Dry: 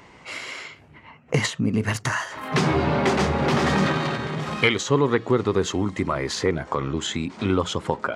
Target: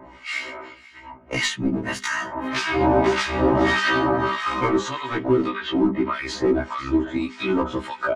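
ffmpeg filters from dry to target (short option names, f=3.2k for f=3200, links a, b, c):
-filter_complex "[0:a]asettb=1/sr,asplit=3[a][b][c];[a]atrim=end=4.224[d];[b]atrim=start=4.22:end=4.9,asetpts=PTS-STARTPTS,afade=t=in:d=0.004:c=qsin,afade=t=out:st=0.676:d=0.004:c=qsin,equalizer=f=1.1k:t=o:w=0.48:g=13.5[e];[c]atrim=start=4.896[f];[d][e]acrossfade=d=0.004:c1=hsin:c2=qsin[g];[g][f]acrossfade=d=0.004:c1=qsin:c2=hsin,asettb=1/sr,asplit=3[h][i][j];[h]atrim=end=5.484[k];[i]atrim=start=5.48:end=6.14,asetpts=PTS-STARTPTS,afade=t=in:d=0.004:c=qsin,afade=t=out:st=0.656:d=0.004:c=qsin,lowpass=f=3.5k:w=0.5412,lowpass=f=3.5k:w=1.3066[l];[j]atrim=start=6.136[m];[k][l]acrossfade=d=0.004:c1=hsin:c2=qsin[n];[n][m]acrossfade=d=0.004:c1=qsin:c2=hsin,aecho=1:1:492:0.0794,acrossover=split=1300[o][p];[o]aeval=exprs='val(0)*(1-1/2+1/2*cos(2*PI*1.7*n/s))':c=same[q];[p]aeval=exprs='val(0)*(1-1/2-1/2*cos(2*PI*1.7*n/s))':c=same[r];[q][r]amix=inputs=2:normalize=0,asplit=2[s][t];[t]aeval=exprs='0.0668*(abs(mod(val(0)/0.0668+3,4)-2)-1)':c=same,volume=-10dB[u];[s][u]amix=inputs=2:normalize=0,aemphasis=mode=reproduction:type=50kf,bandreject=f=50:t=h:w=6,bandreject=f=100:t=h:w=6,bandreject=f=150:t=h:w=6,bandreject=f=200:t=h:w=6,bandreject=f=250:t=h:w=6,bandreject=f=300:t=h:w=6,bandreject=f=350:t=h:w=6,bandreject=f=400:t=h:w=6,aecho=1:1:3.2:0.82,asettb=1/sr,asplit=3[v][w][x];[v]atrim=end=1.674[y];[w]atrim=start=1.67:end=2.81,asetpts=PTS-STARTPTS,afade=t=in:d=0.004:c=qsin,afade=t=out:st=1.136:d=0.004:c=qsin,acompressor=threshold=-24dB:ratio=6[z];[x]atrim=start=2.806[aa];[y][z]acrossfade=d=0.004:c1=hsin:c2=qsin[ab];[ab][aa]acrossfade=d=0.004:c1=qsin:c2=hsin,alimiter=level_in=13.5dB:limit=-1dB:release=50:level=0:latency=1,afftfilt=real='re*1.73*eq(mod(b,3),0)':imag='im*1.73*eq(mod(b,3),0)':win_size=2048:overlap=0.75,volume=-6.5dB"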